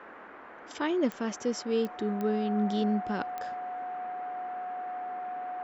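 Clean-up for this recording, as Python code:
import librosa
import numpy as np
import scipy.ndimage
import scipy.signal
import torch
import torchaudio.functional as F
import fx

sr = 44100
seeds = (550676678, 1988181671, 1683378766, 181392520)

y = fx.fix_declick_ar(x, sr, threshold=10.0)
y = fx.notch(y, sr, hz=730.0, q=30.0)
y = fx.noise_reduce(y, sr, print_start_s=0.11, print_end_s=0.61, reduce_db=28.0)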